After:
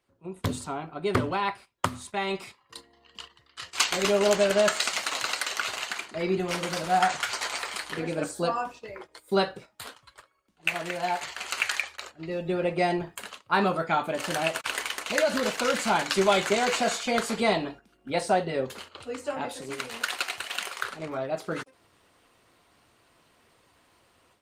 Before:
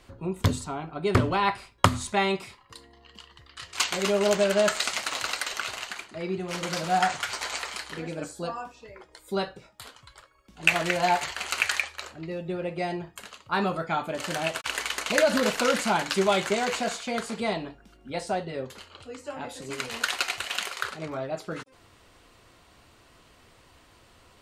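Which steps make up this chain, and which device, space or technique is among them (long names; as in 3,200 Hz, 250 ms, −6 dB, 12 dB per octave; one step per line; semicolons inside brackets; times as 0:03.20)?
video call (high-pass filter 170 Hz 6 dB per octave; automatic gain control gain up to 15 dB; noise gate −35 dBFS, range −10 dB; level −8 dB; Opus 32 kbit/s 48,000 Hz)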